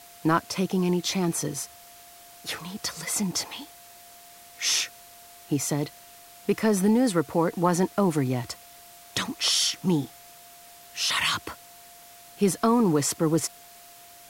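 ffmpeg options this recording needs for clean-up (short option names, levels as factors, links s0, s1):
-af "bandreject=f=700:w=30,afwtdn=0.0035"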